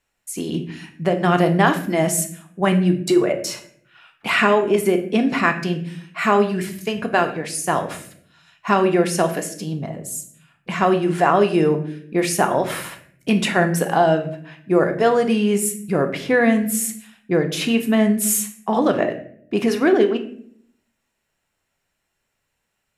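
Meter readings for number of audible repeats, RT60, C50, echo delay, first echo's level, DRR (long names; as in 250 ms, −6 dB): no echo audible, 0.60 s, 11.0 dB, no echo audible, no echo audible, 5.0 dB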